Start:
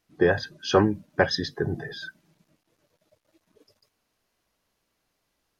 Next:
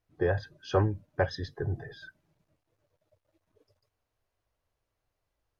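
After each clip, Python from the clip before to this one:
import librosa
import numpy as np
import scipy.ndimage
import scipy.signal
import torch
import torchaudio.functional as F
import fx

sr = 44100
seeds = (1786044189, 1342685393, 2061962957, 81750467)

y = fx.curve_eq(x, sr, hz=(110.0, 190.0, 550.0, 5000.0), db=(0, -16, -7, -16))
y = F.gain(torch.from_numpy(y), 2.0).numpy()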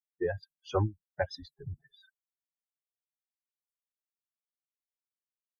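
y = fx.bin_expand(x, sr, power=3.0)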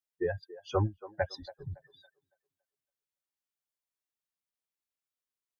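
y = fx.echo_wet_bandpass(x, sr, ms=280, feedback_pct=30, hz=690.0, wet_db=-15.5)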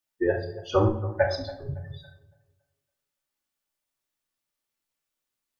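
y = fx.room_shoebox(x, sr, seeds[0], volume_m3=1000.0, walls='furnished', distance_m=2.5)
y = F.gain(torch.from_numpy(y), 5.5).numpy()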